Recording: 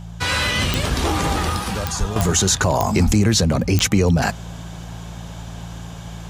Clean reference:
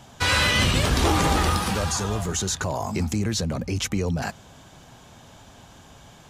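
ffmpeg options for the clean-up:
-filter_complex "[0:a]adeclick=t=4,bandreject=f=56.6:t=h:w=4,bandreject=f=113.2:t=h:w=4,bandreject=f=169.8:t=h:w=4,asplit=3[s0][s1][s2];[s0]afade=t=out:st=1.99:d=0.02[s3];[s1]highpass=f=140:w=0.5412,highpass=f=140:w=1.3066,afade=t=in:st=1.99:d=0.02,afade=t=out:st=2.11:d=0.02[s4];[s2]afade=t=in:st=2.11:d=0.02[s5];[s3][s4][s5]amix=inputs=3:normalize=0,asplit=3[s6][s7][s8];[s6]afade=t=out:st=3.05:d=0.02[s9];[s7]highpass=f=140:w=0.5412,highpass=f=140:w=1.3066,afade=t=in:st=3.05:d=0.02,afade=t=out:st=3.17:d=0.02[s10];[s8]afade=t=in:st=3.17:d=0.02[s11];[s9][s10][s11]amix=inputs=3:normalize=0,asetnsamples=n=441:p=0,asendcmd='2.16 volume volume -9dB',volume=1"

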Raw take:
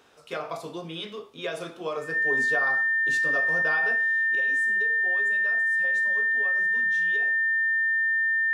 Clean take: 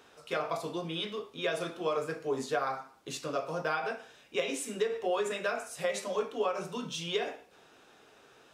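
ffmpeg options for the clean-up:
-af "bandreject=f=1800:w=30,asetnsamples=n=441:p=0,asendcmd='4.35 volume volume 11.5dB',volume=1"

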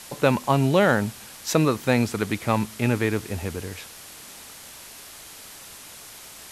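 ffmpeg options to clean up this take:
-af "afwtdn=0.0089"

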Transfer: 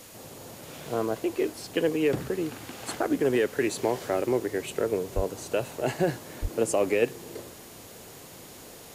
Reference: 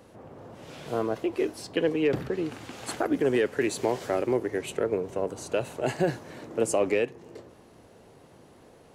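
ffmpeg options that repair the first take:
-filter_complex "[0:a]bandreject=f=6800:w=30,asplit=3[s0][s1][s2];[s0]afade=t=out:st=5.15:d=0.02[s3];[s1]highpass=f=140:w=0.5412,highpass=f=140:w=1.3066,afade=t=in:st=5.15:d=0.02,afade=t=out:st=5.27:d=0.02[s4];[s2]afade=t=in:st=5.27:d=0.02[s5];[s3][s4][s5]amix=inputs=3:normalize=0,asplit=3[s6][s7][s8];[s6]afade=t=out:st=6.41:d=0.02[s9];[s7]highpass=f=140:w=0.5412,highpass=f=140:w=1.3066,afade=t=in:st=6.41:d=0.02,afade=t=out:st=6.53:d=0.02[s10];[s8]afade=t=in:st=6.53:d=0.02[s11];[s9][s10][s11]amix=inputs=3:normalize=0,afwtdn=0.004,asetnsamples=n=441:p=0,asendcmd='7.02 volume volume -4.5dB',volume=1"

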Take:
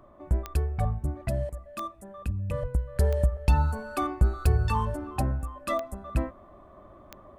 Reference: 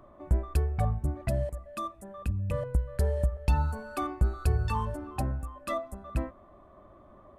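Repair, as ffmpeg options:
-filter_complex "[0:a]adeclick=t=4,asplit=3[s0][s1][s2];[s0]afade=t=out:st=0.8:d=0.02[s3];[s1]highpass=f=140:w=0.5412,highpass=f=140:w=1.3066,afade=t=in:st=0.8:d=0.02,afade=t=out:st=0.92:d=0.02[s4];[s2]afade=t=in:st=0.92:d=0.02[s5];[s3][s4][s5]amix=inputs=3:normalize=0,asplit=3[s6][s7][s8];[s6]afade=t=out:st=2.61:d=0.02[s9];[s7]highpass=f=140:w=0.5412,highpass=f=140:w=1.3066,afade=t=in:st=2.61:d=0.02,afade=t=out:st=2.73:d=0.02[s10];[s8]afade=t=in:st=2.73:d=0.02[s11];[s9][s10][s11]amix=inputs=3:normalize=0,asetnsamples=n=441:p=0,asendcmd='2.96 volume volume -3.5dB',volume=1"

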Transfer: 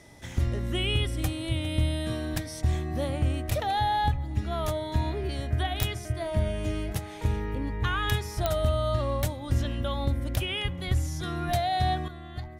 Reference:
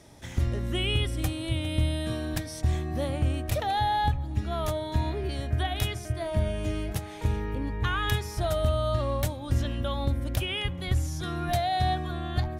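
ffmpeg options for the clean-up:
-af "adeclick=t=4,bandreject=f=2000:w=30,asetnsamples=n=441:p=0,asendcmd='12.08 volume volume 9.5dB',volume=1"

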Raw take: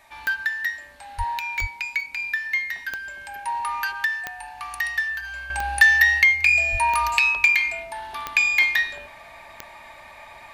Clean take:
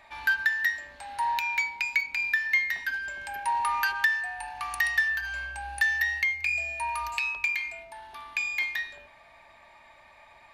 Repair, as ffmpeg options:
-filter_complex "[0:a]adeclick=t=4,asplit=3[s0][s1][s2];[s0]afade=t=out:st=1.17:d=0.02[s3];[s1]highpass=f=140:w=0.5412,highpass=f=140:w=1.3066,afade=t=in:st=1.17:d=0.02,afade=t=out:st=1.29:d=0.02[s4];[s2]afade=t=in:st=1.29:d=0.02[s5];[s3][s4][s5]amix=inputs=3:normalize=0,asplit=3[s6][s7][s8];[s6]afade=t=out:st=1.6:d=0.02[s9];[s7]highpass=f=140:w=0.5412,highpass=f=140:w=1.3066,afade=t=in:st=1.6:d=0.02,afade=t=out:st=1.72:d=0.02[s10];[s8]afade=t=in:st=1.72:d=0.02[s11];[s9][s10][s11]amix=inputs=3:normalize=0,asplit=3[s12][s13][s14];[s12]afade=t=out:st=6.71:d=0.02[s15];[s13]highpass=f=140:w=0.5412,highpass=f=140:w=1.3066,afade=t=in:st=6.71:d=0.02,afade=t=out:st=6.83:d=0.02[s16];[s14]afade=t=in:st=6.83:d=0.02[s17];[s15][s16][s17]amix=inputs=3:normalize=0,agate=range=0.0891:threshold=0.0158,asetnsamples=n=441:p=0,asendcmd='5.5 volume volume -10.5dB',volume=1"

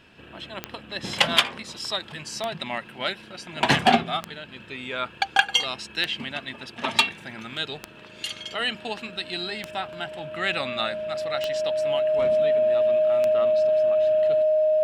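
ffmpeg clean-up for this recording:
-af "adeclick=t=4,bandreject=f=620:w=30"

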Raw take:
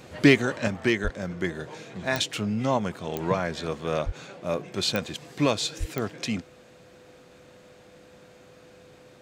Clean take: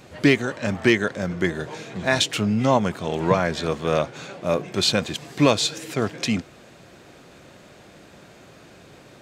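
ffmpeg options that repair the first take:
-filter_complex "[0:a]adeclick=t=4,bandreject=f=500:w=30,asplit=3[s0][s1][s2];[s0]afade=t=out:st=1.03:d=0.02[s3];[s1]highpass=f=140:w=0.5412,highpass=f=140:w=1.3066,afade=t=in:st=1.03:d=0.02,afade=t=out:st=1.15:d=0.02[s4];[s2]afade=t=in:st=1.15:d=0.02[s5];[s3][s4][s5]amix=inputs=3:normalize=0,asplit=3[s6][s7][s8];[s6]afade=t=out:st=4.05:d=0.02[s9];[s7]highpass=f=140:w=0.5412,highpass=f=140:w=1.3066,afade=t=in:st=4.05:d=0.02,afade=t=out:st=4.17:d=0.02[s10];[s8]afade=t=in:st=4.17:d=0.02[s11];[s9][s10][s11]amix=inputs=3:normalize=0,asplit=3[s12][s13][s14];[s12]afade=t=out:st=5.79:d=0.02[s15];[s13]highpass=f=140:w=0.5412,highpass=f=140:w=1.3066,afade=t=in:st=5.79:d=0.02,afade=t=out:st=5.91:d=0.02[s16];[s14]afade=t=in:st=5.91:d=0.02[s17];[s15][s16][s17]amix=inputs=3:normalize=0,asetnsamples=n=441:p=0,asendcmd='0.68 volume volume 6dB',volume=1"

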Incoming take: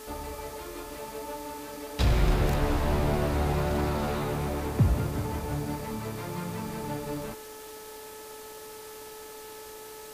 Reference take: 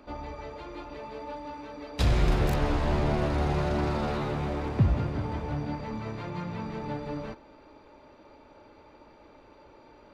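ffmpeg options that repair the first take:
-af "bandreject=f=433.2:t=h:w=4,bandreject=f=866.4:t=h:w=4,bandreject=f=1299.6:t=h:w=4,bandreject=f=1732.8:t=h:w=4,afwtdn=0.0045"

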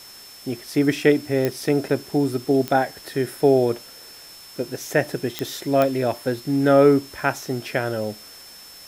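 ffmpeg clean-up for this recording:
-af "adeclick=t=4,bandreject=f=5300:w=30,afwtdn=0.0056"

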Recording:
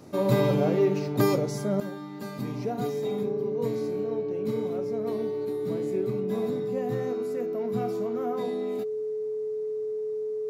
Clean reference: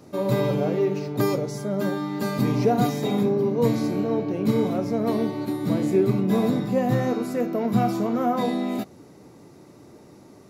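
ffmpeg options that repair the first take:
-af "bandreject=f=430:w=30,asetnsamples=n=441:p=0,asendcmd='1.8 volume volume 10.5dB',volume=1"

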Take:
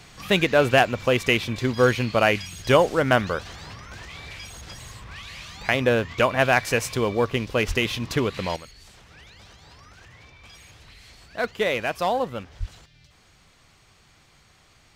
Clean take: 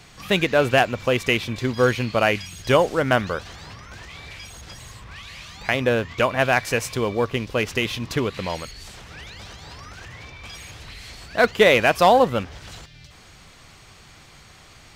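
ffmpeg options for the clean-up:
-filter_complex "[0:a]asplit=3[s0][s1][s2];[s0]afade=t=out:st=7.67:d=0.02[s3];[s1]highpass=f=140:w=0.5412,highpass=f=140:w=1.3066,afade=t=in:st=7.67:d=0.02,afade=t=out:st=7.79:d=0.02[s4];[s2]afade=t=in:st=7.79:d=0.02[s5];[s3][s4][s5]amix=inputs=3:normalize=0,asplit=3[s6][s7][s8];[s6]afade=t=out:st=12.59:d=0.02[s9];[s7]highpass=f=140:w=0.5412,highpass=f=140:w=1.3066,afade=t=in:st=12.59:d=0.02,afade=t=out:st=12.71:d=0.02[s10];[s8]afade=t=in:st=12.71:d=0.02[s11];[s9][s10][s11]amix=inputs=3:normalize=0,asetnsamples=n=441:p=0,asendcmd='8.56 volume volume 9dB',volume=1"

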